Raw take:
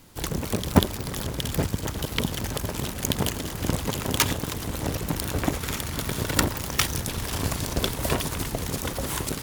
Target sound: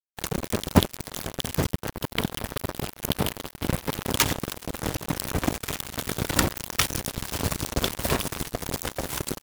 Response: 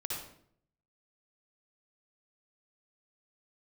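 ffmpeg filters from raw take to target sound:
-filter_complex "[0:a]asettb=1/sr,asplit=3[a][b][c];[a]atrim=end=1.714[d];[b]atrim=start=1.71:end=4.06,asetpts=PTS-STARTPTS,afade=t=in:d=0.004:c=qsin,afade=t=out:st=2.346:d=0.004:c=qsin,equalizer=f=6.8k:t=o:w=0.6:g=-9.5[e];[c]atrim=start=4.056[f];[d][e]acrossfade=d=0.004:c1=hsin:c2=qsin[g];[g][f]acrossfade=d=0.004:c1=qsin:c2=hsin,acrusher=bits=3:mix=0:aa=0.5"

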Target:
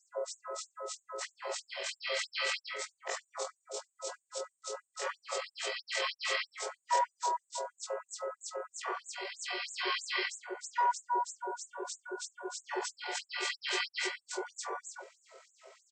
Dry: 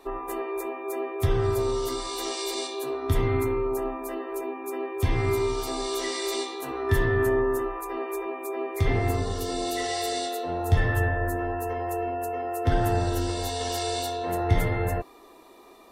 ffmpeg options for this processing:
-af "afftfilt=real='re':imag='-im':win_size=2048:overlap=0.75,asetrate=24046,aresample=44100,atempo=1.83401,afftfilt=real='re*gte(b*sr/1024,360*pow(6700/360,0.5+0.5*sin(2*PI*3.1*pts/sr)))':imag='im*gte(b*sr/1024,360*pow(6700/360,0.5+0.5*sin(2*PI*3.1*pts/sr)))':win_size=1024:overlap=0.75,volume=6.5dB"

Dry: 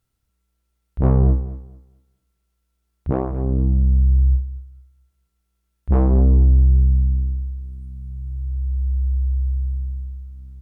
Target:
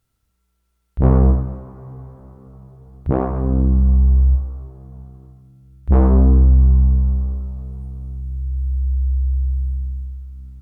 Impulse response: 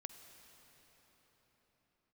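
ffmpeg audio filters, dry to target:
-filter_complex "[0:a]asplit=2[a][b];[b]equalizer=f=1.2k:t=o:w=1.4:g=9.5[c];[1:a]atrim=start_sample=2205,adelay=88[d];[c][d]afir=irnorm=-1:irlink=0,volume=-6dB[e];[a][e]amix=inputs=2:normalize=0,volume=3dB"

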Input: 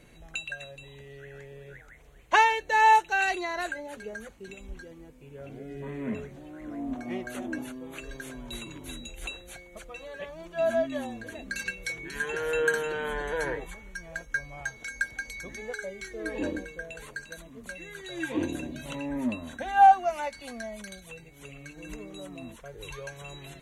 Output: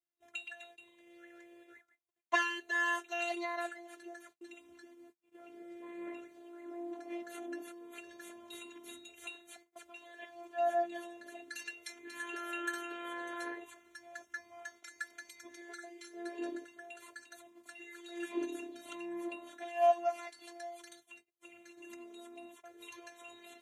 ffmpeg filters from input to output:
-af "afftfilt=real='hypot(re,im)*cos(PI*b)':imag='0':win_size=512:overlap=0.75,agate=range=-36dB:threshold=-51dB:ratio=16:detection=peak,highpass=260,volume=-4.5dB"

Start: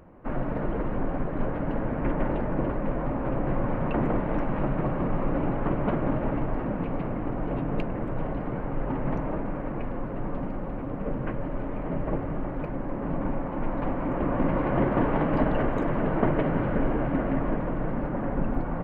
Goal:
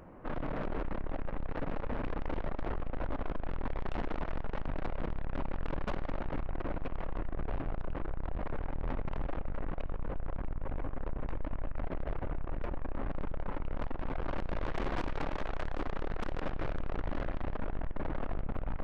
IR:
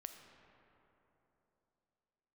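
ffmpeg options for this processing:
-filter_complex "[0:a]asubboost=boost=5.5:cutoff=56,aeval=exprs='(tanh(39.8*val(0)+0.25)-tanh(0.25))/39.8':c=same,asplit=2[a][b];[1:a]atrim=start_sample=2205,lowshelf=f=450:g=-10[c];[b][c]afir=irnorm=-1:irlink=0,volume=1.5dB[d];[a][d]amix=inputs=2:normalize=0,volume=-2dB"

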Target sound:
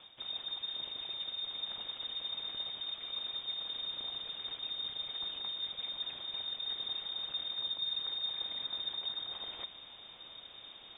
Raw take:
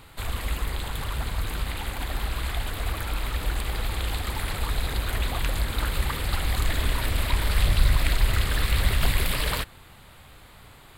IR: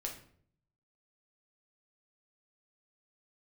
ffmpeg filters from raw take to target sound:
-af "crystalizer=i=4:c=0,areverse,acompressor=threshold=-35dB:ratio=5,areverse,equalizer=f=125:t=o:w=1:g=-6,equalizer=f=1k:t=o:w=1:g=-10,equalizer=f=2k:t=o:w=1:g=-11,lowpass=f=3.1k:t=q:w=0.5098,lowpass=f=3.1k:t=q:w=0.6013,lowpass=f=3.1k:t=q:w=0.9,lowpass=f=3.1k:t=q:w=2.563,afreqshift=-3700"

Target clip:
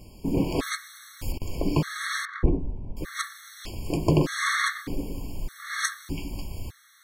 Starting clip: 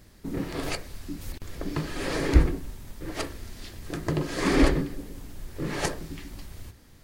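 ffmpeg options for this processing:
-filter_complex "[0:a]asettb=1/sr,asplit=3[a][b][c];[a]atrim=end=2.254[d];[b]atrim=start=2.25:end=2.97,asetpts=PTS-STARTPTS,afade=t=in:d=0.004:c=qsin,afade=t=out:st=0.716:d=0.004:c=qsin,adynamicsmooth=sensitivity=0.5:basefreq=820[e];[c]atrim=start=2.966[f];[d][e]acrossfade=d=0.004:c1=hsin:c2=qsin[g];[g][f]acrossfade=d=0.004:c1=qsin:c2=hsin,afftfilt=real='re*gt(sin(2*PI*0.82*pts/sr)*(1-2*mod(floor(b*sr/1024/1100),2)),0)':imag='im*gt(sin(2*PI*0.82*pts/sr)*(1-2*mod(floor(b*sr/1024/1100),2)),0)':win_size=1024:overlap=0.75,volume=7dB"

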